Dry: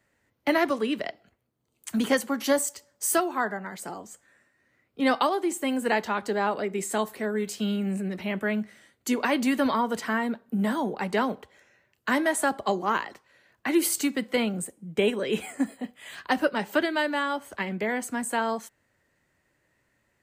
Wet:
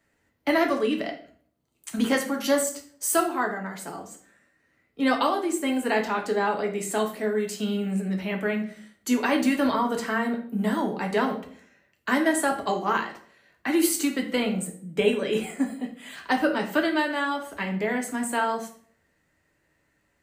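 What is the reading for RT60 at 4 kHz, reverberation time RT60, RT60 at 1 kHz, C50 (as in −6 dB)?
0.40 s, 0.50 s, 0.45 s, 9.5 dB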